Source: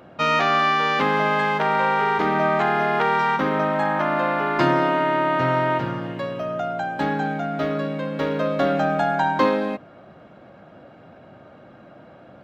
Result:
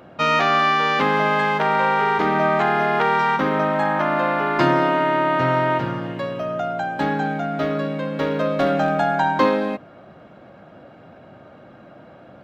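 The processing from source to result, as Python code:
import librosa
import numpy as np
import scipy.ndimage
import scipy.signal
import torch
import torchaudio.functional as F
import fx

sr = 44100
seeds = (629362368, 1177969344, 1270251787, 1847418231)

y = fx.clip_hard(x, sr, threshold_db=-13.5, at=(8.26, 8.9))
y = F.gain(torch.from_numpy(y), 1.5).numpy()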